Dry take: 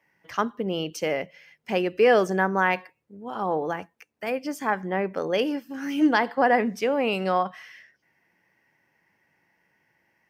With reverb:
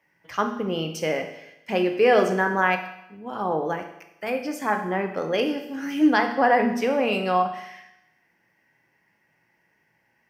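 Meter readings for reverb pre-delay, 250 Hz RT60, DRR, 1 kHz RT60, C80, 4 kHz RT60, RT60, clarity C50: 8 ms, 0.85 s, 4.5 dB, 0.90 s, 11.0 dB, 0.85 s, 0.85 s, 8.0 dB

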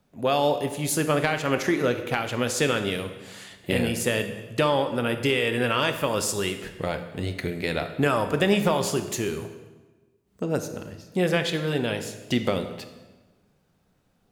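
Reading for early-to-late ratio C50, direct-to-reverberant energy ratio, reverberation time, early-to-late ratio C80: 9.5 dB, 7.5 dB, 1.3 s, 11.5 dB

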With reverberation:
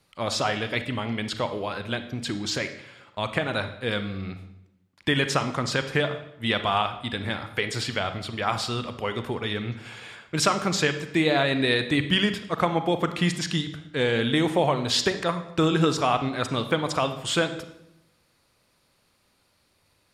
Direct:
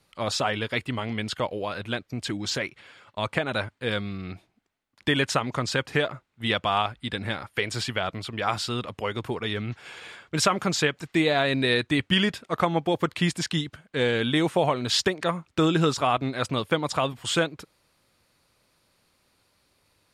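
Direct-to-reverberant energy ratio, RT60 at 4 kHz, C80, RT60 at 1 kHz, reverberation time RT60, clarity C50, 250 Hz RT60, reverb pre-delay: 9.0 dB, 0.70 s, 13.5 dB, 0.75 s, 0.85 s, 10.5 dB, 1.1 s, 32 ms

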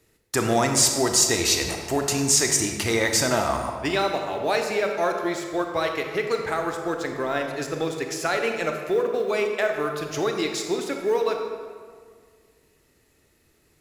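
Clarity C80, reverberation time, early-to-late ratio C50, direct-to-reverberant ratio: 6.0 dB, 1.8 s, 4.5 dB, 3.5 dB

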